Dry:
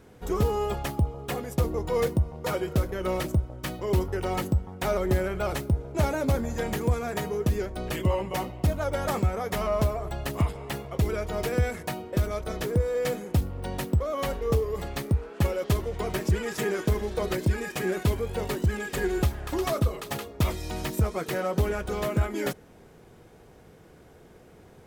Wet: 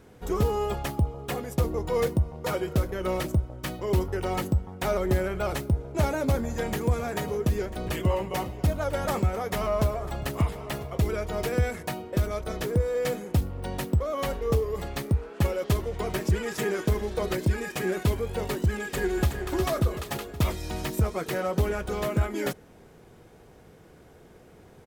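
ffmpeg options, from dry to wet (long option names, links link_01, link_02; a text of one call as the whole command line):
ffmpeg -i in.wav -filter_complex "[0:a]asettb=1/sr,asplit=3[link_01][link_02][link_03];[link_01]atrim=end=5.834[link_04];[link_02]atrim=start=5.83:end=11.04,asetpts=PTS-STARTPTS,afade=type=in:duration=0.004:curve=qsin,afade=type=out:start_time=5.206:duration=0.004:curve=qsin,aecho=1:1:994:0.15,atrim=end_sample=229761[link_05];[link_03]atrim=start=11.036[link_06];[link_04][link_05]acrossfade=duration=0.004:curve1=hsin:curve2=qsin[link_07];[link_07][link_06]acrossfade=duration=0.004:curve1=qsin:curve2=hsin,asplit=2[link_08][link_09];[link_09]afade=type=in:start_time=18.8:duration=0.01,afade=type=out:start_time=19.29:duration=0.01,aecho=0:1:370|740|1110|1480|1850|2220|2590|2960:0.375837|0.225502|0.135301|0.0811809|0.0487085|0.0292251|0.0175351|0.010521[link_10];[link_08][link_10]amix=inputs=2:normalize=0" out.wav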